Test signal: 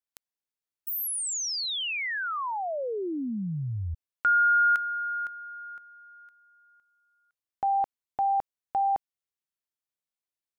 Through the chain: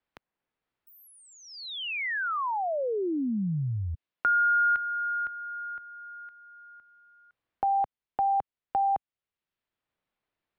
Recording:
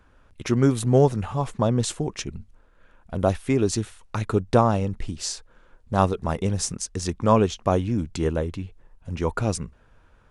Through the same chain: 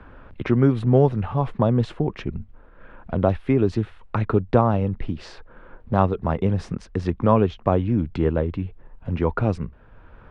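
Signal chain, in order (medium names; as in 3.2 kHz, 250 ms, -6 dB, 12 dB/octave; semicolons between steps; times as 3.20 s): distance through air 390 m; three bands compressed up and down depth 40%; trim +3 dB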